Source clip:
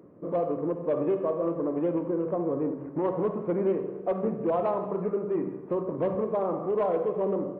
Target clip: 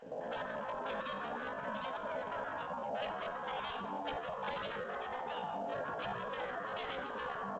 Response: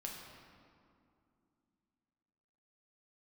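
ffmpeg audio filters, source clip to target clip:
-filter_complex "[0:a]afftfilt=real='re*lt(hypot(re,im),0.0562)':imag='im*lt(hypot(re,im),0.0562)':win_size=1024:overlap=0.75,firequalizer=gain_entry='entry(130,0);entry(240,-4);entry(350,13);entry(520,7);entry(1300,-6);entry(2100,5);entry(3700,-28);entry(6200,6)':delay=0.05:min_phase=1,alimiter=level_in=4.47:limit=0.0631:level=0:latency=1:release=48,volume=0.224,acrossover=split=260|830[s0][s1][s2];[s0]adelay=40[s3];[s1]adelay=140[s4];[s3][s4][s2]amix=inputs=3:normalize=0,asetrate=66075,aresample=44100,atempo=0.66742,volume=2.37" -ar 16000 -c:a pcm_mulaw

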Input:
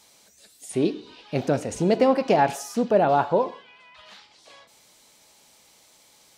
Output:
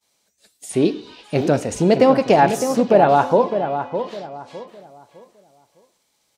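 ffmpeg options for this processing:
-filter_complex "[0:a]agate=range=0.0224:threshold=0.00562:ratio=3:detection=peak,asplit=2[s0][s1];[s1]adelay=608,lowpass=f=1700:p=1,volume=0.398,asplit=2[s2][s3];[s3]adelay=608,lowpass=f=1700:p=1,volume=0.31,asplit=2[s4][s5];[s5]adelay=608,lowpass=f=1700:p=1,volume=0.31,asplit=2[s6][s7];[s7]adelay=608,lowpass=f=1700:p=1,volume=0.31[s8];[s0][s2][s4][s6][s8]amix=inputs=5:normalize=0,volume=1.88"

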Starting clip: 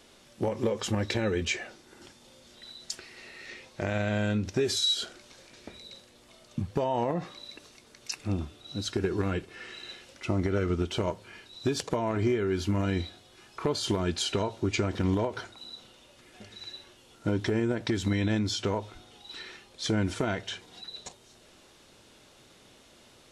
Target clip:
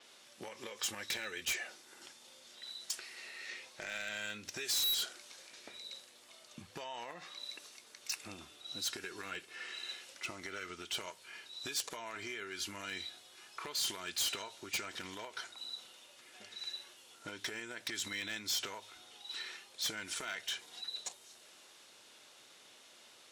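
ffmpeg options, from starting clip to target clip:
-filter_complex "[0:a]highpass=f=1100:p=1,acrossover=split=1400[s0][s1];[s0]acompressor=threshold=0.00447:ratio=6[s2];[s2][s1]amix=inputs=2:normalize=0,asoftclip=type=hard:threshold=0.0251,adynamicequalizer=threshold=0.00251:dfrequency=7000:dqfactor=0.7:tfrequency=7000:tqfactor=0.7:attack=5:release=100:ratio=0.375:range=3:mode=boostabove:tftype=highshelf"

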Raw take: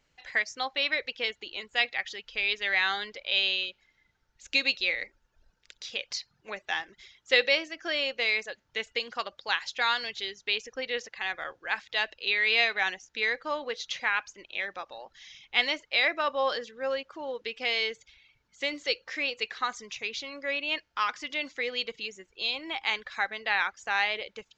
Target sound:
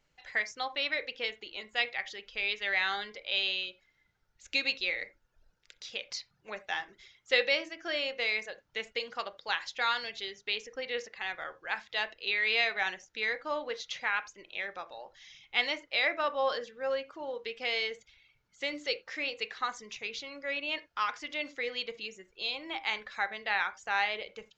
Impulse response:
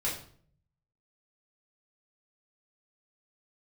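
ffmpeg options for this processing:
-filter_complex "[0:a]asplit=2[s0][s1];[1:a]atrim=start_sample=2205,afade=t=out:st=0.14:d=0.01,atrim=end_sample=6615,lowpass=2000[s2];[s1][s2]afir=irnorm=-1:irlink=0,volume=0.211[s3];[s0][s3]amix=inputs=2:normalize=0,volume=0.631"

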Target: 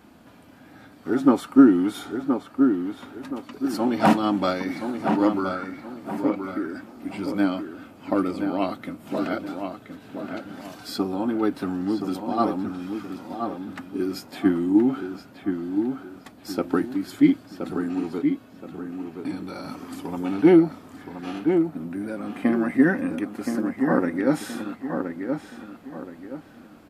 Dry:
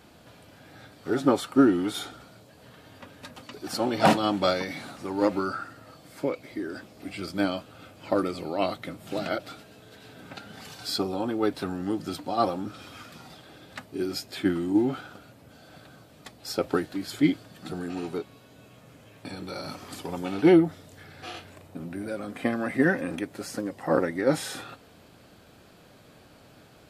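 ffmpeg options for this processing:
-filter_complex "[0:a]equalizer=f=125:t=o:w=1:g=-5,equalizer=f=250:t=o:w=1:g=9,equalizer=f=500:t=o:w=1:g=-4,equalizer=f=1000:t=o:w=1:g=3,equalizer=f=4000:t=o:w=1:g=-5,equalizer=f=8000:t=o:w=1:g=-3,asplit=2[s0][s1];[s1]adelay=1023,lowpass=f=2500:p=1,volume=0.501,asplit=2[s2][s3];[s3]adelay=1023,lowpass=f=2500:p=1,volume=0.36,asplit=2[s4][s5];[s5]adelay=1023,lowpass=f=2500:p=1,volume=0.36,asplit=2[s6][s7];[s7]adelay=1023,lowpass=f=2500:p=1,volume=0.36[s8];[s0][s2][s4][s6][s8]amix=inputs=5:normalize=0"

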